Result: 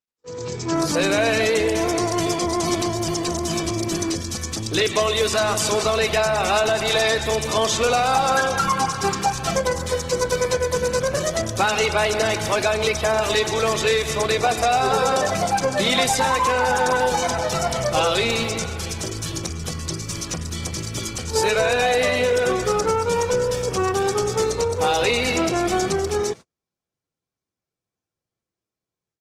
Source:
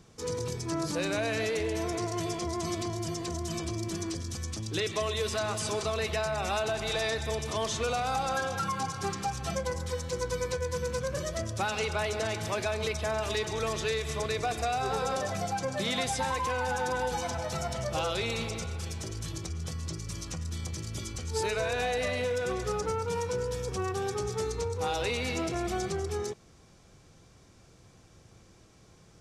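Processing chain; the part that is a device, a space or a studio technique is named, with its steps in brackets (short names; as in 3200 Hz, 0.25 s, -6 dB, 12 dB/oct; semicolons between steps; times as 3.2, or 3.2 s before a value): video call (HPF 170 Hz 6 dB/oct; AGC gain up to 15 dB; gate -31 dBFS, range -41 dB; gain -3 dB; Opus 16 kbps 48000 Hz)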